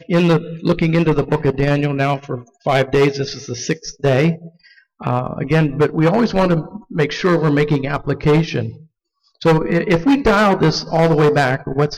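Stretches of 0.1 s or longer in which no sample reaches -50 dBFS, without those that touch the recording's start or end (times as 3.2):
4.83–5
8.87–9.25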